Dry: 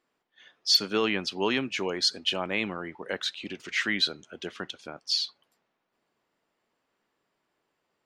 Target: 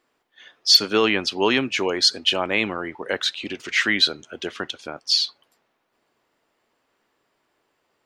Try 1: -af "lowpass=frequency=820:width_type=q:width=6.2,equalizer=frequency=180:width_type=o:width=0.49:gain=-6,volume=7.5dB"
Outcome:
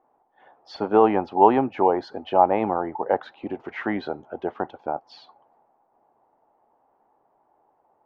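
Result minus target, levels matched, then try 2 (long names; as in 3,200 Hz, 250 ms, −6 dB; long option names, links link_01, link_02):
1,000 Hz band +13.0 dB
-af "equalizer=frequency=180:width_type=o:width=0.49:gain=-6,volume=7.5dB"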